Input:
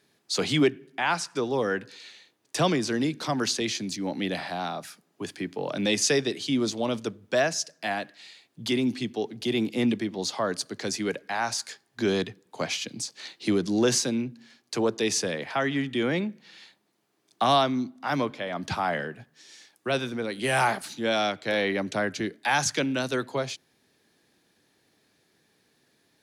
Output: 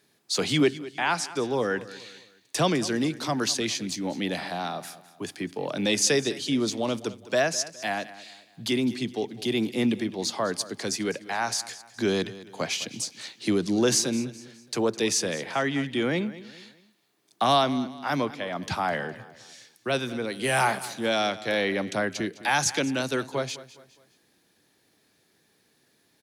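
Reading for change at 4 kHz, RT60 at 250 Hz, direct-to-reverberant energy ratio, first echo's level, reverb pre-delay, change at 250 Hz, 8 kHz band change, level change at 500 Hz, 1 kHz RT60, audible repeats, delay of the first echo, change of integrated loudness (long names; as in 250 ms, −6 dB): +1.0 dB, no reverb audible, no reverb audible, −17.0 dB, no reverb audible, 0.0 dB, +2.0 dB, 0.0 dB, no reverb audible, 3, 207 ms, +0.5 dB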